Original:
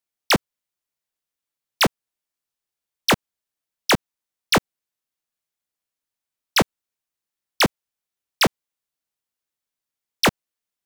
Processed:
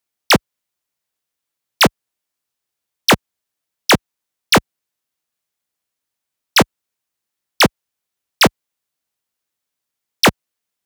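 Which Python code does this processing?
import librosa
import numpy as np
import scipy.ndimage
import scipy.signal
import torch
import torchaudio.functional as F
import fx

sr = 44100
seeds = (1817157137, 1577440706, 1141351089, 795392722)

y = scipy.signal.sosfilt(scipy.signal.butter(2, 45.0, 'highpass', fs=sr, output='sos'), x)
y = y * librosa.db_to_amplitude(6.0)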